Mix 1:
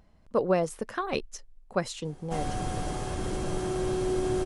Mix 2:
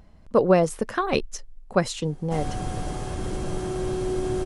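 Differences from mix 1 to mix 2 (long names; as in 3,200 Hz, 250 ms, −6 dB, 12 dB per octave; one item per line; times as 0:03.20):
speech +6.0 dB
master: add low-shelf EQ 250 Hz +3.5 dB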